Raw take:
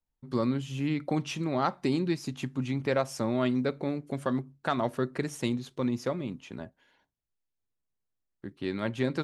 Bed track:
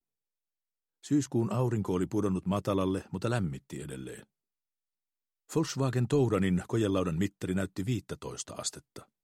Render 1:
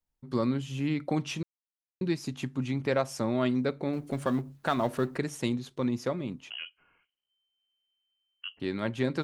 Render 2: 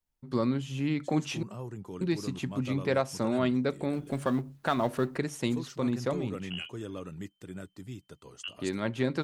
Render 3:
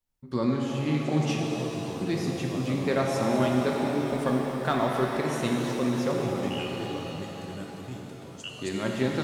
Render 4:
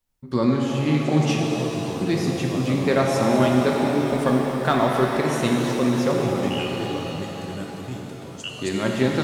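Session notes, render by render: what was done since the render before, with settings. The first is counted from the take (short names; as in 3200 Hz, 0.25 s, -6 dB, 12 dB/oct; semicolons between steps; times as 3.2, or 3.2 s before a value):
1.43–2.01 mute; 3.93–5.17 G.711 law mismatch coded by mu; 6.5–8.6 inverted band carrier 3100 Hz
add bed track -11 dB
shimmer reverb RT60 3.8 s, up +7 st, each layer -8 dB, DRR -0.5 dB
gain +6 dB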